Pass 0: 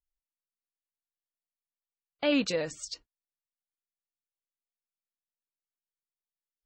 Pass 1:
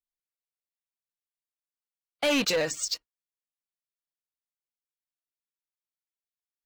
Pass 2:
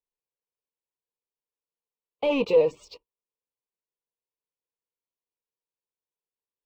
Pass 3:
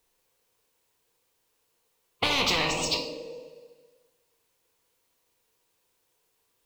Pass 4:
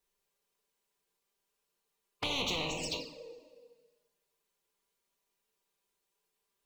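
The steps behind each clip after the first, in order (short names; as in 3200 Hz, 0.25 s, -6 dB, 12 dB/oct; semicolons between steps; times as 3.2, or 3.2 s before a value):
low shelf 450 Hz -10 dB; sample leveller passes 3
EQ curve 300 Hz 0 dB, 470 Hz +12 dB, 680 Hz -4 dB, 1000 Hz +6 dB, 1600 Hz -28 dB, 2500 Hz -3 dB, 6600 Hz -25 dB
two-slope reverb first 0.52 s, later 1.5 s, from -16 dB, DRR 4 dB; spectral compressor 10:1; gain -6 dB
envelope flanger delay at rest 5.1 ms, full sweep at -24 dBFS; gain -6.5 dB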